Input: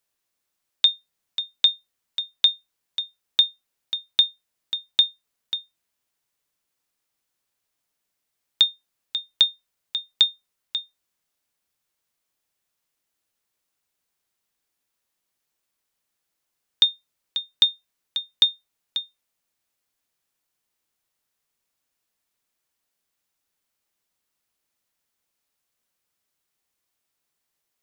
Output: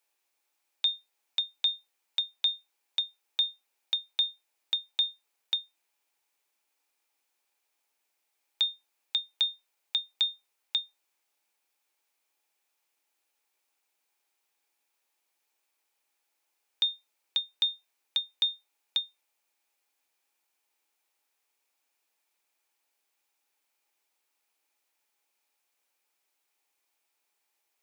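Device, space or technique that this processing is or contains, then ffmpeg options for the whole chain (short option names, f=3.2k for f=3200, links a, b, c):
laptop speaker: -af "highpass=f=290:w=0.5412,highpass=f=290:w=1.3066,equalizer=f=840:t=o:w=0.2:g=9,equalizer=f=2.4k:t=o:w=0.25:g=7,alimiter=limit=-16dB:level=0:latency=1:release=108"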